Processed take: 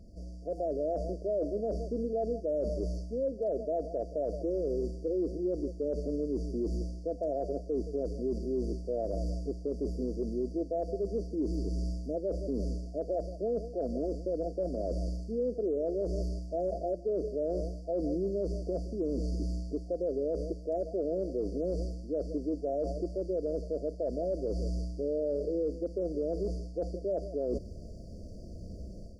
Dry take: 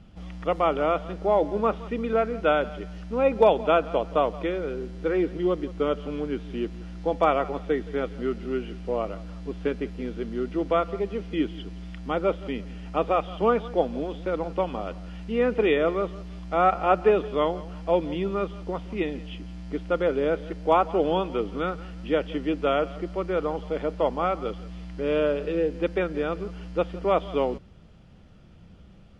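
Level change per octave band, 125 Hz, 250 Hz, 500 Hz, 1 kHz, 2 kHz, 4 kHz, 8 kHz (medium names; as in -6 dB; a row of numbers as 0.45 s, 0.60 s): -2.5 dB, -5.5 dB, -7.0 dB, under -15 dB, under -40 dB, under -15 dB, no reading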